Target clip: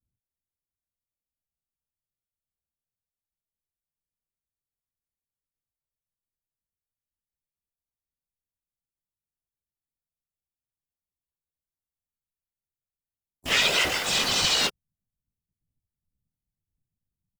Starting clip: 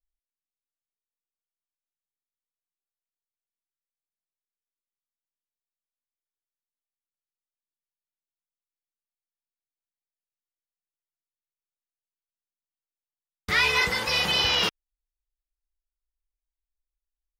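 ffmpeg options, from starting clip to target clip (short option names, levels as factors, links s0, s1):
-filter_complex "[0:a]aecho=1:1:6.5:0.65,afftfilt=real='hypot(re,im)*cos(2*PI*random(0))':imag='hypot(re,im)*sin(2*PI*random(1))':win_size=512:overlap=0.75,asplit=4[s0][s1][s2][s3];[s1]asetrate=58866,aresample=44100,atempo=0.749154,volume=1[s4];[s2]asetrate=66075,aresample=44100,atempo=0.66742,volume=1[s5];[s3]asetrate=88200,aresample=44100,atempo=0.5,volume=0.224[s6];[s0][s4][s5][s6]amix=inputs=4:normalize=0,acrossover=split=330|1000|7000[s7][s8][s9][s10];[s9]acrusher=bits=5:mix=0:aa=0.5[s11];[s7][s8][s11][s10]amix=inputs=4:normalize=0"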